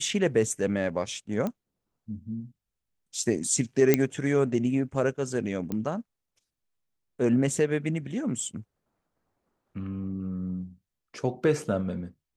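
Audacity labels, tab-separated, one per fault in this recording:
1.470000	1.470000	pop -18 dBFS
3.940000	3.940000	pop -6 dBFS
5.720000	5.720000	pop -19 dBFS

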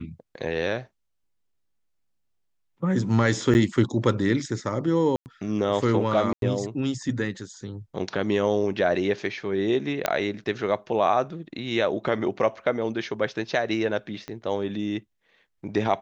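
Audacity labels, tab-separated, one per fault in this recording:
3.540000	3.550000	gap 9.5 ms
5.160000	5.260000	gap 99 ms
6.330000	6.420000	gap 92 ms
10.060000	10.060000	pop -7 dBFS
14.280000	14.280000	pop -20 dBFS

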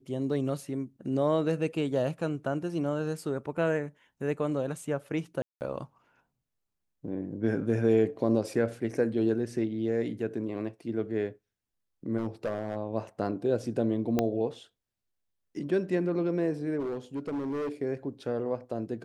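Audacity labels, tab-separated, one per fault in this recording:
5.420000	5.610000	gap 0.189 s
12.170000	12.770000	clipped -26 dBFS
14.190000	14.190000	pop -13 dBFS
16.790000	17.720000	clipped -29.5 dBFS

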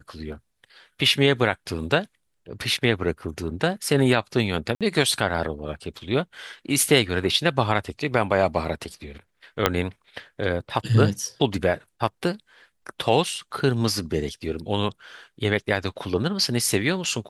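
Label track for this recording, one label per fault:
4.750000	4.810000	gap 57 ms
9.660000	9.660000	pop -3 dBFS

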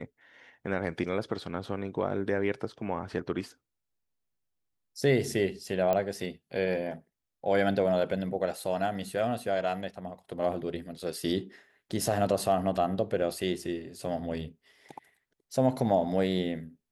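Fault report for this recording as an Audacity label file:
5.930000	5.930000	pop -15 dBFS

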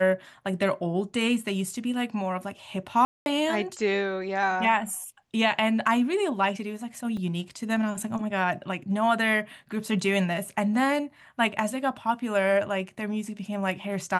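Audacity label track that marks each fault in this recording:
3.050000	3.260000	gap 0.211 s
7.170000	7.170000	gap 3.7 ms

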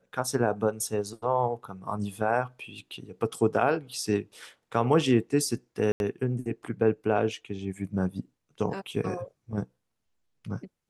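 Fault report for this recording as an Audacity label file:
5.920000	6.000000	gap 81 ms

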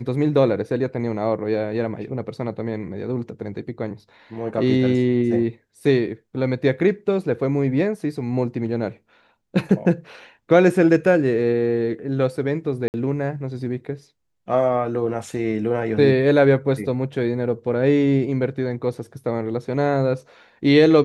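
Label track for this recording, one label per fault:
12.880000	12.940000	gap 59 ms

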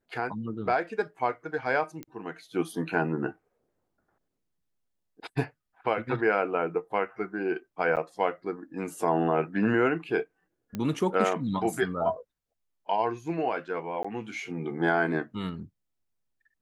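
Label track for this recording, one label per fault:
2.030000	2.030000	pop -24 dBFS
7.960000	7.970000	gap 8.1 ms
10.750000	10.750000	pop -20 dBFS
14.030000	14.040000	gap 15 ms

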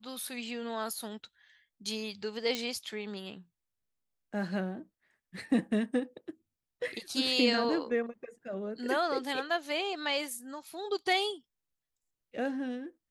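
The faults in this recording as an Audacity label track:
2.550000	2.550000	pop -17 dBFS

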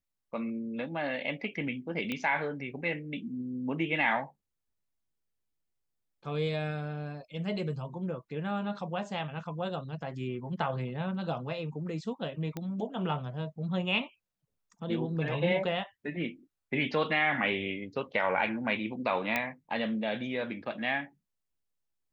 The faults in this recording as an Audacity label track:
2.120000	2.120000	pop -20 dBFS
12.570000	12.570000	pop -22 dBFS
19.360000	19.360000	pop -14 dBFS

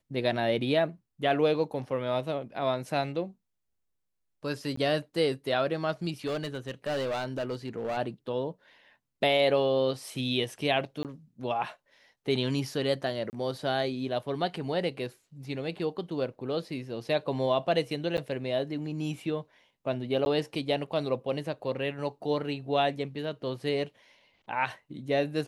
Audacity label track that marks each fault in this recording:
4.760000	4.770000	gap 14 ms
6.260000	7.980000	clipped -27.5 dBFS
11.030000	11.050000	gap 18 ms
13.300000	13.330000	gap 29 ms
18.170000	18.180000	gap 9.2 ms
20.250000	20.260000	gap 11 ms

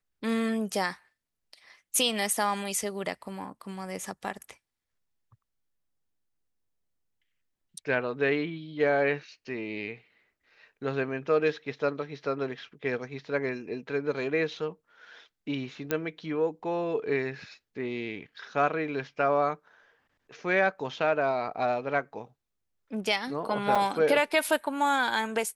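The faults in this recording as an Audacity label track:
15.910000	15.910000	pop -13 dBFS
23.750000	23.760000	gap 5.2 ms

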